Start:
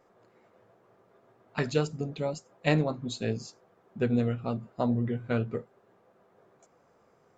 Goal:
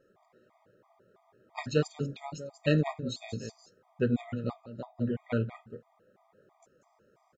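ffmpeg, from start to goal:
ffmpeg -i in.wav -filter_complex "[0:a]aecho=1:1:189:0.299,asplit=3[link_01][link_02][link_03];[link_01]afade=type=out:start_time=4.6:duration=0.02[link_04];[link_02]acompressor=threshold=-38dB:ratio=2.5,afade=type=in:start_time=4.6:duration=0.02,afade=type=out:start_time=5:duration=0.02[link_05];[link_03]afade=type=in:start_time=5:duration=0.02[link_06];[link_04][link_05][link_06]amix=inputs=3:normalize=0,afftfilt=real='re*gt(sin(2*PI*3*pts/sr)*(1-2*mod(floor(b*sr/1024/630),2)),0)':imag='im*gt(sin(2*PI*3*pts/sr)*(1-2*mod(floor(b*sr/1024/630),2)),0)':win_size=1024:overlap=0.75" out.wav

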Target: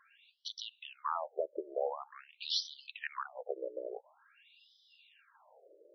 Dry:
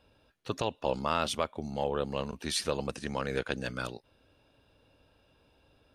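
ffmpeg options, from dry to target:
ffmpeg -i in.wav -af "acompressor=threshold=-39dB:ratio=6,afftfilt=real='re*between(b*sr/1024,430*pow(4300/430,0.5+0.5*sin(2*PI*0.47*pts/sr))/1.41,430*pow(4300/430,0.5+0.5*sin(2*PI*0.47*pts/sr))*1.41)':imag='im*between(b*sr/1024,430*pow(4300/430,0.5+0.5*sin(2*PI*0.47*pts/sr))/1.41,430*pow(4300/430,0.5+0.5*sin(2*PI*0.47*pts/sr))*1.41)':win_size=1024:overlap=0.75,volume=10.5dB" out.wav

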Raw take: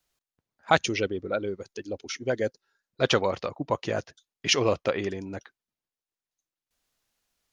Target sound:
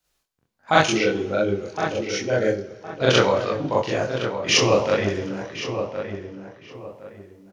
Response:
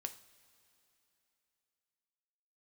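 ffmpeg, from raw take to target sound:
-filter_complex "[0:a]flanger=delay=19:depth=6.5:speed=1.4,asplit=2[link_01][link_02];[link_02]adelay=1064,lowpass=frequency=1900:poles=1,volume=-8dB,asplit=2[link_03][link_04];[link_04]adelay=1064,lowpass=frequency=1900:poles=1,volume=0.29,asplit=2[link_05][link_06];[link_06]adelay=1064,lowpass=frequency=1900:poles=1,volume=0.29[link_07];[link_01][link_03][link_05][link_07]amix=inputs=4:normalize=0,asplit=2[link_08][link_09];[1:a]atrim=start_sample=2205,adelay=41[link_10];[link_09][link_10]afir=irnorm=-1:irlink=0,volume=7dB[link_11];[link_08][link_11]amix=inputs=2:normalize=0,volume=3.5dB"

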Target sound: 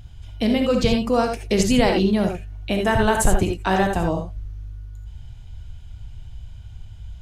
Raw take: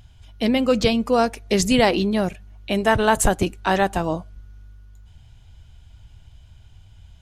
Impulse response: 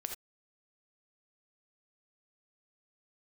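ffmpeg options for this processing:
-filter_complex "[0:a]lowshelf=frequency=190:gain=7,asplit=2[link_01][link_02];[link_02]acompressor=threshold=-23dB:ratio=6,volume=2dB[link_03];[link_01][link_03]amix=inputs=2:normalize=0[link_04];[1:a]atrim=start_sample=2205[link_05];[link_04][link_05]afir=irnorm=-1:irlink=0,volume=-4dB"

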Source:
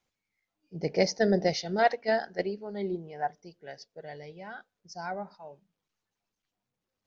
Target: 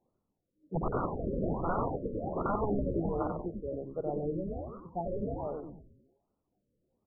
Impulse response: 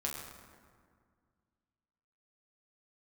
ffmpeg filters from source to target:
-filter_complex "[0:a]equalizer=frequency=320:width=0.43:gain=12.5,acompressor=threshold=-17dB:ratio=4,aeval=exprs='(mod(12.6*val(0)+1,2)-1)/12.6':channel_layout=same,asplit=8[link_01][link_02][link_03][link_04][link_05][link_06][link_07][link_08];[link_02]adelay=93,afreqshift=-140,volume=-3.5dB[link_09];[link_03]adelay=186,afreqshift=-280,volume=-9dB[link_10];[link_04]adelay=279,afreqshift=-420,volume=-14.5dB[link_11];[link_05]adelay=372,afreqshift=-560,volume=-20dB[link_12];[link_06]adelay=465,afreqshift=-700,volume=-25.6dB[link_13];[link_07]adelay=558,afreqshift=-840,volume=-31.1dB[link_14];[link_08]adelay=651,afreqshift=-980,volume=-36.6dB[link_15];[link_01][link_09][link_10][link_11][link_12][link_13][link_14][link_15]amix=inputs=8:normalize=0,afftfilt=real='re*lt(b*sr/1024,570*pow(1500/570,0.5+0.5*sin(2*PI*1.3*pts/sr)))':imag='im*lt(b*sr/1024,570*pow(1500/570,0.5+0.5*sin(2*PI*1.3*pts/sr)))':win_size=1024:overlap=0.75,volume=-1.5dB"

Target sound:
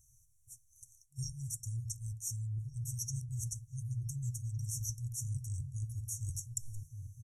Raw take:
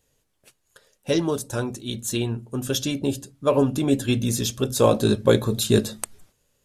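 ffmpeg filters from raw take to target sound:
ffmpeg -i in.wav -filter_complex "[0:a]afftfilt=real='re*(1-between(b*sr/4096,160,6000))':imag='im*(1-between(b*sr/4096,160,6000))':win_size=4096:overlap=0.75,areverse,acompressor=threshold=-41dB:ratio=10,areverse,asplit=2[link_01][link_02];[link_02]adelay=1341,volume=-7dB,highshelf=frequency=4000:gain=-30.2[link_03];[link_01][link_03]amix=inputs=2:normalize=0,asetrate=40517,aresample=44100,volume=4.5dB" out.wav

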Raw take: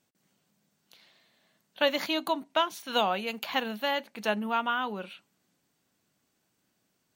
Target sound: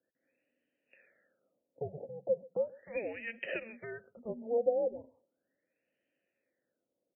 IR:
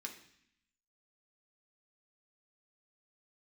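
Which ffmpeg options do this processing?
-filter_complex "[0:a]asettb=1/sr,asplit=3[link_01][link_02][link_03];[link_01]atrim=end=1.964[link_04];[link_02]atrim=start=1.96:end=4.1,asetpts=PTS-STARTPTS,afade=type=in:duration=0.004:curve=qsin,afade=type=out:start_time=2.136:duration=0.004:curve=qsin,acompressor=threshold=-29dB:ratio=10[link_05];[link_03]atrim=start=4.096[link_06];[link_04][link_05]acrossfade=duration=0.004:curve1=hsin:curve2=qsin[link_07];[link_07][link_06]acrossfade=duration=0.004:curve1=qsin:curve2=hsin,afreqshift=-450,asplit=3[link_08][link_09][link_10];[link_08]bandpass=frequency=530:width_type=q:width=8,volume=0dB[link_11];[link_09]bandpass=frequency=1840:width_type=q:width=8,volume=-6dB[link_12];[link_10]bandpass=frequency=2480:width_type=q:width=8,volume=-9dB[link_13];[link_11][link_12][link_13]amix=inputs=3:normalize=0,aecho=1:1:133:0.0668,afftfilt=real='re*lt(b*sr/1024,870*pow(3200/870,0.5+0.5*sin(2*PI*0.37*pts/sr)))':imag='im*lt(b*sr/1024,870*pow(3200/870,0.5+0.5*sin(2*PI*0.37*pts/sr)))':win_size=1024:overlap=0.75,volume=8.5dB"

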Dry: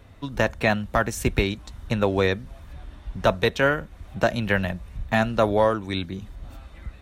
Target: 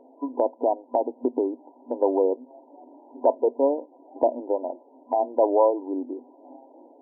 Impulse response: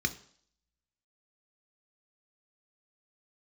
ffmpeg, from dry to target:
-filter_complex "[0:a]afftfilt=real='re*between(b*sr/4096,240,1000)':imag='im*between(b*sr/4096,240,1000)':win_size=4096:overlap=0.75,asplit=2[link_01][link_02];[link_02]acompressor=threshold=-34dB:ratio=6,volume=-0.5dB[link_03];[link_01][link_03]amix=inputs=2:normalize=0"

